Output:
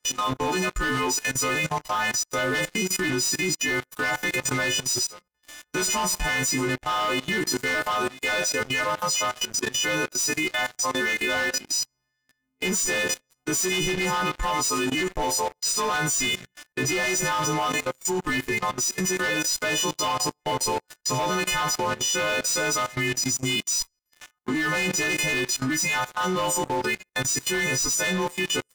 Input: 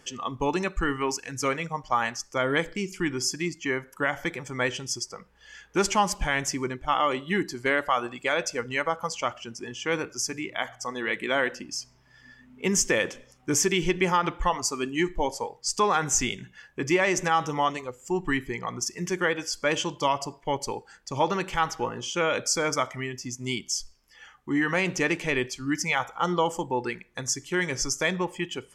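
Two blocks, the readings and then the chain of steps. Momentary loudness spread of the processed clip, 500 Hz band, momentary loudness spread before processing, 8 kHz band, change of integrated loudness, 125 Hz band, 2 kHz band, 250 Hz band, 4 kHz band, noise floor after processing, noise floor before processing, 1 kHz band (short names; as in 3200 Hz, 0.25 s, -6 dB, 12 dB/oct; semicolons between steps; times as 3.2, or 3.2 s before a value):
3 LU, -0.5 dB, 9 LU, +6.5 dB, +3.0 dB, +1.5 dB, +4.0 dB, +0.5 dB, +6.0 dB, -79 dBFS, -58 dBFS, +0.5 dB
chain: frequency quantiser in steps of 3 st; sample leveller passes 5; level quantiser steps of 18 dB; gain -6.5 dB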